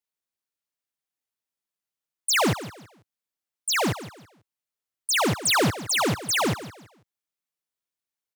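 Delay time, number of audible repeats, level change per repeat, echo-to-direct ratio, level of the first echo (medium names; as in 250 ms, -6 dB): 164 ms, 2, -10.5 dB, -14.0 dB, -14.5 dB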